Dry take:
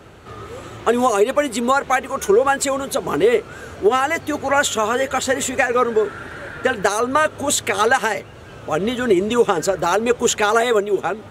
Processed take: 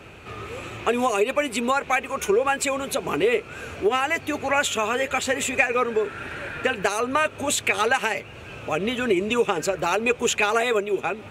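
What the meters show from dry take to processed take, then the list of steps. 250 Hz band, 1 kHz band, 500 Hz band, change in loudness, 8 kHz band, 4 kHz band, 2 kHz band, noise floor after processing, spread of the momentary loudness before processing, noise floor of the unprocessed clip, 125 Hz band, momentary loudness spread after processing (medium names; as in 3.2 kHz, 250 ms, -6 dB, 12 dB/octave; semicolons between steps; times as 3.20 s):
-5.5 dB, -5.5 dB, -5.5 dB, -4.5 dB, -5.0 dB, -2.5 dB, -2.0 dB, -42 dBFS, 8 LU, -39 dBFS, -4.5 dB, 9 LU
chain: peaking EQ 2.5 kHz +13.5 dB 0.34 oct; in parallel at +0.5 dB: compression, threshold -25 dBFS, peak gain reduction 16 dB; on the sum: trim -8 dB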